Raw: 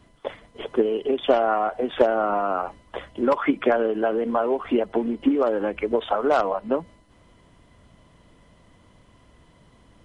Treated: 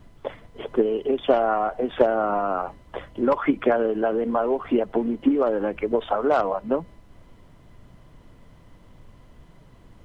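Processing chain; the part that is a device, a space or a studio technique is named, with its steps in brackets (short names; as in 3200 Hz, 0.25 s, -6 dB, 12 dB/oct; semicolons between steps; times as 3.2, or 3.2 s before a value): car interior (bell 130 Hz +5 dB 0.77 oct; high shelf 2800 Hz -7 dB; brown noise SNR 25 dB)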